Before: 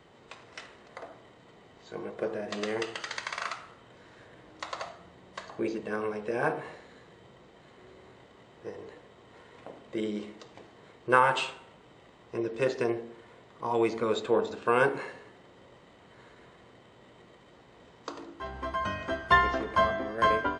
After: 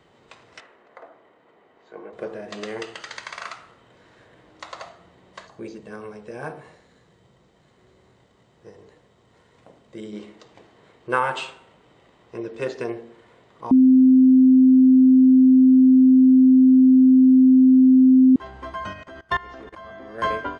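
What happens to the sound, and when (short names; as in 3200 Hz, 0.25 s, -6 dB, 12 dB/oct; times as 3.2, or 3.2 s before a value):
0.6–2.13 three-band isolator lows -15 dB, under 250 Hz, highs -14 dB, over 2500 Hz
5.47–10.13 EQ curve 170 Hz 0 dB, 290 Hz -5 dB, 2700 Hz -6 dB, 5900 Hz 0 dB
13.71–18.36 bleep 259 Hz -9.5 dBFS
18.93–20.15 level quantiser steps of 20 dB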